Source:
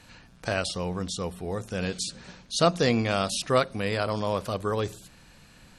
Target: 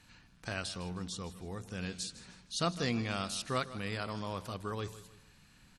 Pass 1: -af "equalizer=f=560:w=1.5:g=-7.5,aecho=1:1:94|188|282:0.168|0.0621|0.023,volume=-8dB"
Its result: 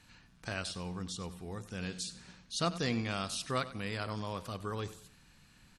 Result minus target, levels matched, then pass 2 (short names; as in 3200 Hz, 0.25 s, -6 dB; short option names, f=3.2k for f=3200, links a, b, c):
echo 62 ms early
-af "equalizer=f=560:w=1.5:g=-7.5,aecho=1:1:156|312|468:0.168|0.0621|0.023,volume=-8dB"